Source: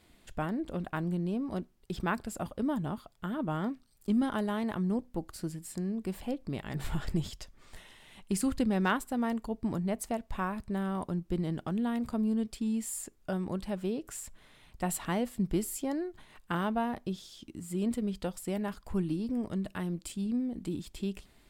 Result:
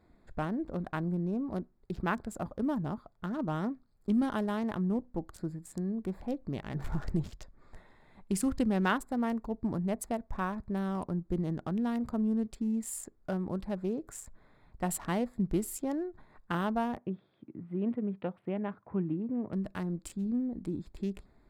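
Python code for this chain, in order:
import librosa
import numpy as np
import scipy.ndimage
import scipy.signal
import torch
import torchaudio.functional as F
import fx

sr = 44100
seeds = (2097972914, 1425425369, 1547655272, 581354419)

y = fx.wiener(x, sr, points=15)
y = fx.ellip_bandpass(y, sr, low_hz=110.0, high_hz=2800.0, order=3, stop_db=40, at=(16.97, 19.53))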